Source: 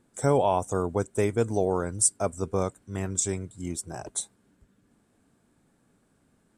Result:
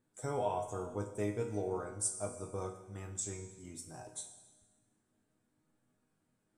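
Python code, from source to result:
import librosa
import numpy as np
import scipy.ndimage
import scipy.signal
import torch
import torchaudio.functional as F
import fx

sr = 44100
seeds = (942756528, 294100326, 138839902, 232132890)

y = fx.resonator_bank(x, sr, root=44, chord='minor', decay_s=0.27)
y = fx.rev_schroeder(y, sr, rt60_s=1.3, comb_ms=33, drr_db=8.5)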